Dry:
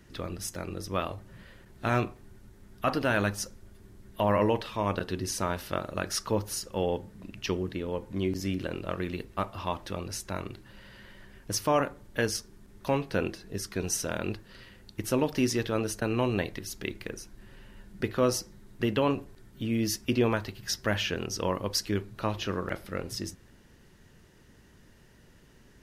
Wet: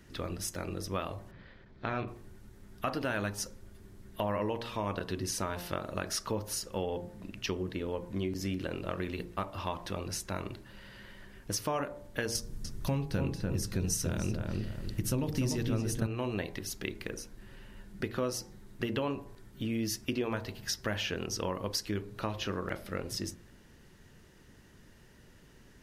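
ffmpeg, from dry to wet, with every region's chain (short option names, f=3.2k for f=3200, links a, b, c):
-filter_complex "[0:a]asettb=1/sr,asplit=3[a][b][c];[a]atrim=end=1.314[d];[b]atrim=start=1.31:end=2.08,asetpts=PTS-STARTPTS,afade=t=in:d=0.004:c=qsin,afade=t=out:st=0.766:d=0.004:c=qsin,lowpass=f=4.5k:w=0.5412,lowpass=f=4.5k:w=1.3066,bandreject=f=2.8k:w=10,tremolo=f=250:d=0.571[e];[c]atrim=start=2.076[f];[d][e]acrossfade=d=0.004:c1=hsin:c2=qsin[g];[g][f]acrossfade=d=0.004:c1=qsin:c2=hsin,asettb=1/sr,asplit=3[h][i][j];[h]atrim=end=12.354[k];[i]atrim=start=12.35:end=16.07,asetpts=PTS-STARTPTS,afade=t=in:d=0.004:c=qsin,afade=t=out:st=3.716:d=0.004:c=qsin,bass=f=250:g=15,treble=f=4k:g=7,bandreject=f=50:t=h:w=6,bandreject=f=100:t=h:w=6,bandreject=f=150:t=h:w=6,bandreject=f=200:t=h:w=6,bandreject=f=250:t=h:w=6,bandreject=f=300:t=h:w=6,bandreject=f=350:t=h:w=6,bandreject=f=400:t=h:w=6,bandreject=f=450:t=h:w=6,asplit=2[l][m];[m]adelay=294,lowpass=f=1.9k:p=1,volume=-4.5dB,asplit=2[n][o];[o]adelay=294,lowpass=f=1.9k:p=1,volume=0.25,asplit=2[p][q];[q]adelay=294,lowpass=f=1.9k:p=1,volume=0.25[r];[l][n][p][r]amix=inputs=4:normalize=0,atrim=end_sample=164052[s];[j]atrim=start=16.066[t];[k][s]acrossfade=d=0.004:c1=hsin:c2=qsin[u];[u][t]acrossfade=d=0.004:c1=qsin:c2=hsin,bandreject=f=58.5:t=h:w=4,bandreject=f=117:t=h:w=4,bandreject=f=175.5:t=h:w=4,bandreject=f=234:t=h:w=4,bandreject=f=292.5:t=h:w=4,bandreject=f=351:t=h:w=4,bandreject=f=409.5:t=h:w=4,bandreject=f=468:t=h:w=4,bandreject=f=526.5:t=h:w=4,bandreject=f=585:t=h:w=4,bandreject=f=643.5:t=h:w=4,bandreject=f=702:t=h:w=4,bandreject=f=760.5:t=h:w=4,bandreject=f=819:t=h:w=4,bandreject=f=877.5:t=h:w=4,bandreject=f=936:t=h:w=4,bandreject=f=994.5:t=h:w=4,bandreject=f=1.053k:t=h:w=4,bandreject=f=1.1115k:t=h:w=4,acompressor=threshold=-31dB:ratio=3"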